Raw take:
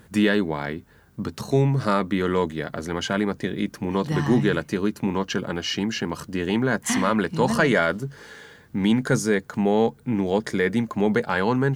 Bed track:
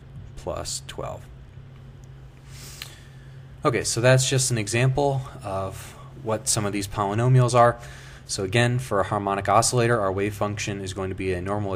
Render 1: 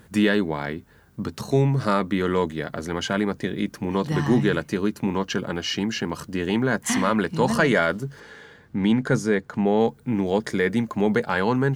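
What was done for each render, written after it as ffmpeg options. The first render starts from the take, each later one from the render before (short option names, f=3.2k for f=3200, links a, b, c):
-filter_complex "[0:a]asettb=1/sr,asplit=3[a][b][c];[a]atrim=end=8.204[d];[b]atrim=start=8.2:end=9.81,asetpts=PTS-STARTPTS,afade=t=in:d=0.004:c=qsin,afade=t=out:st=1.606:d=0.004:c=qsin,lowpass=f=3.5k:p=1[e];[c]atrim=start=9.806[f];[d][e]acrossfade=d=0.004:c1=hsin:c2=qsin[g];[g][f]acrossfade=d=0.004:c1=qsin:c2=hsin"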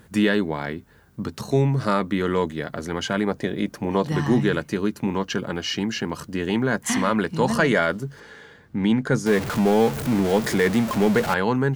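-filter_complex "[0:a]asettb=1/sr,asplit=3[a][b][c];[a]atrim=end=3.274[d];[b]atrim=start=3.27:end=4.08,asetpts=PTS-STARTPTS,afade=t=in:d=0.004:c=qsin,afade=t=out:st=0.806:d=0.004:c=qsin,equalizer=f=650:t=o:w=1:g=6.5[e];[c]atrim=start=4.076[f];[d][e]acrossfade=d=0.004:c1=hsin:c2=qsin[g];[g][f]acrossfade=d=0.004:c1=qsin:c2=hsin,asettb=1/sr,asplit=3[h][i][j];[h]atrim=end=9.264[k];[i]atrim=start=9.26:end=11.34,asetpts=PTS-STARTPTS,afade=t=in:d=0.004:c=qsin,afade=t=out:st=2.076:d=0.004:c=qsin,aeval=exprs='val(0)+0.5*0.0668*sgn(val(0))':c=same[l];[j]atrim=start=11.336[m];[k][l]acrossfade=d=0.004:c1=hsin:c2=qsin[n];[n][m]acrossfade=d=0.004:c1=qsin:c2=hsin"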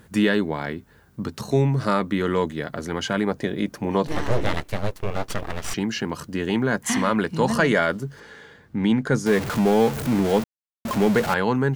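-filter_complex "[0:a]asettb=1/sr,asplit=3[a][b][c];[a]atrim=end=4.074[d];[b]atrim=start=4.07:end=5.74,asetpts=PTS-STARTPTS,afade=t=in:d=0.004:c=qsin,afade=t=out:st=1.666:d=0.004:c=qsin,aeval=exprs='abs(val(0))':c=same[e];[c]atrim=start=5.736[f];[d][e]acrossfade=d=0.004:c1=hsin:c2=qsin[g];[g][f]acrossfade=d=0.004:c1=qsin:c2=hsin,asplit=3[h][i][j];[h]atrim=end=10.44,asetpts=PTS-STARTPTS,afade=t=out:st=10.436:d=0.004:c=hsin[k];[i]atrim=start=10.44:end=10.85,asetpts=PTS-STARTPTS,volume=0[l];[j]atrim=start=10.85,asetpts=PTS-STARTPTS,afade=t=in:d=0.004:c=hsin[m];[k][l][m]concat=n=3:v=0:a=1"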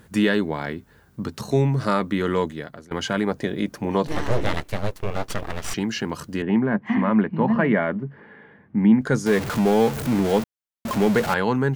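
-filter_complex "[0:a]asettb=1/sr,asplit=3[a][b][c];[a]atrim=end=6.424[d];[b]atrim=start=6.42:end=9.01,asetpts=PTS-STARTPTS,afade=t=in:d=0.004:c=qsin,afade=t=out:st=2.586:d=0.004:c=qsin,highpass=110,equalizer=f=210:t=q:w=4:g=7,equalizer=f=480:t=q:w=4:g=-4,equalizer=f=1.4k:t=q:w=4:g=-7,lowpass=f=2.2k:w=0.5412,lowpass=f=2.2k:w=1.3066[e];[c]atrim=start=9.006[f];[d][e]acrossfade=d=0.004:c1=hsin:c2=qsin[g];[g][f]acrossfade=d=0.004:c1=qsin:c2=hsin,asplit=2[h][i];[h]atrim=end=2.91,asetpts=PTS-STARTPTS,afade=t=out:st=2.4:d=0.51:silence=0.0707946[j];[i]atrim=start=2.91,asetpts=PTS-STARTPTS,afade=t=in:d=0.004:c=hsin:silence=0.0707946[k];[j][k]concat=n=2:v=0:a=1"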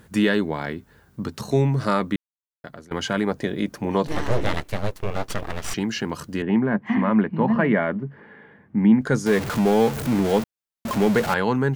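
-filter_complex "[0:a]asplit=3[a][b][c];[a]atrim=end=2.16,asetpts=PTS-STARTPTS,afade=t=out:st=2.156:d=0.004:c=hsin[d];[b]atrim=start=2.16:end=2.64,asetpts=PTS-STARTPTS,volume=0[e];[c]atrim=start=2.64,asetpts=PTS-STARTPTS,afade=t=in:d=0.004:c=hsin[f];[d][e][f]concat=n=3:v=0:a=1"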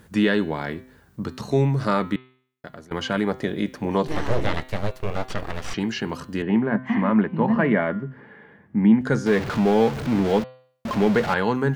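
-filter_complex "[0:a]bandreject=f=128.4:t=h:w=4,bandreject=f=256.8:t=h:w=4,bandreject=f=385.2:t=h:w=4,bandreject=f=513.6:t=h:w=4,bandreject=f=642:t=h:w=4,bandreject=f=770.4:t=h:w=4,bandreject=f=898.8:t=h:w=4,bandreject=f=1.0272k:t=h:w=4,bandreject=f=1.1556k:t=h:w=4,bandreject=f=1.284k:t=h:w=4,bandreject=f=1.4124k:t=h:w=4,bandreject=f=1.5408k:t=h:w=4,bandreject=f=1.6692k:t=h:w=4,bandreject=f=1.7976k:t=h:w=4,bandreject=f=1.926k:t=h:w=4,bandreject=f=2.0544k:t=h:w=4,bandreject=f=2.1828k:t=h:w=4,bandreject=f=2.3112k:t=h:w=4,bandreject=f=2.4396k:t=h:w=4,bandreject=f=2.568k:t=h:w=4,bandreject=f=2.6964k:t=h:w=4,bandreject=f=2.8248k:t=h:w=4,bandreject=f=2.9532k:t=h:w=4,bandreject=f=3.0816k:t=h:w=4,bandreject=f=3.21k:t=h:w=4,bandreject=f=3.3384k:t=h:w=4,bandreject=f=3.4668k:t=h:w=4,bandreject=f=3.5952k:t=h:w=4,bandreject=f=3.7236k:t=h:w=4,bandreject=f=3.852k:t=h:w=4,bandreject=f=3.9804k:t=h:w=4,bandreject=f=4.1088k:t=h:w=4,bandreject=f=4.2372k:t=h:w=4,bandreject=f=4.3656k:t=h:w=4,bandreject=f=4.494k:t=h:w=4,acrossover=split=5500[a][b];[b]acompressor=threshold=-50dB:ratio=4:attack=1:release=60[c];[a][c]amix=inputs=2:normalize=0"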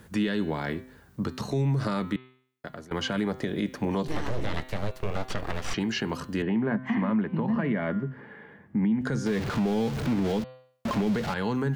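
-filter_complex "[0:a]acrossover=split=270|3000[a][b][c];[b]acompressor=threshold=-26dB:ratio=6[d];[a][d][c]amix=inputs=3:normalize=0,alimiter=limit=-18.5dB:level=0:latency=1:release=120"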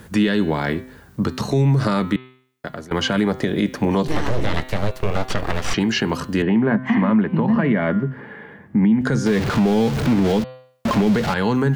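-af "volume=9dB"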